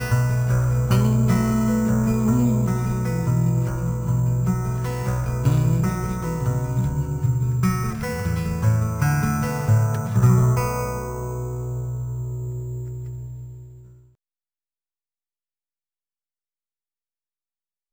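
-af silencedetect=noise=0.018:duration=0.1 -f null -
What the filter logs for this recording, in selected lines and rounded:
silence_start: 13.62
silence_end: 17.93 | silence_duration: 4.30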